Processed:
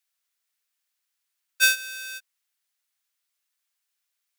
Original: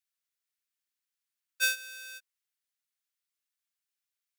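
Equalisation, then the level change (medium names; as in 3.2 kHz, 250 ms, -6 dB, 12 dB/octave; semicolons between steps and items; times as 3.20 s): high-pass 580 Hz; +8.5 dB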